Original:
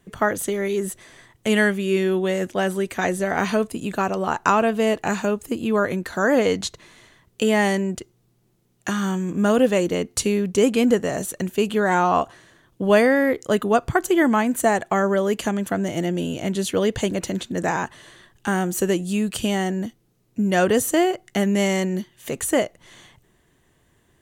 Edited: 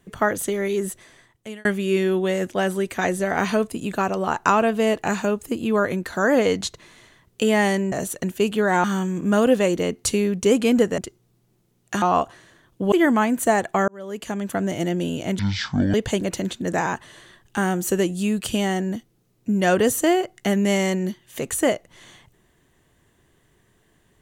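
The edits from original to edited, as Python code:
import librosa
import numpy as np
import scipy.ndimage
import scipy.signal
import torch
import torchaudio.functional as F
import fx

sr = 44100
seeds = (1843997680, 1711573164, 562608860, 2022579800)

y = fx.edit(x, sr, fx.fade_out_span(start_s=0.85, length_s=0.8),
    fx.swap(start_s=7.92, length_s=1.04, other_s=11.1, other_length_s=0.92),
    fx.cut(start_s=12.92, length_s=1.17),
    fx.fade_in_span(start_s=15.05, length_s=0.76),
    fx.speed_span(start_s=16.56, length_s=0.28, speed=0.51), tone=tone)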